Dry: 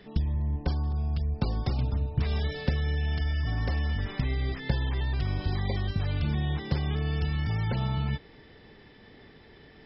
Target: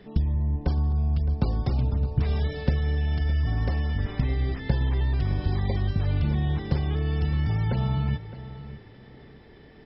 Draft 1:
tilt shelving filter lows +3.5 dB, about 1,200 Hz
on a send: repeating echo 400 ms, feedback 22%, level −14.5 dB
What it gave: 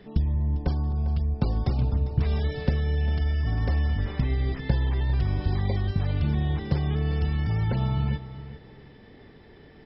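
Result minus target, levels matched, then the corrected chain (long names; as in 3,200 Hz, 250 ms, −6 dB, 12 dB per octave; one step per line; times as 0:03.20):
echo 214 ms early
tilt shelving filter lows +3.5 dB, about 1,200 Hz
on a send: repeating echo 614 ms, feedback 22%, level −14.5 dB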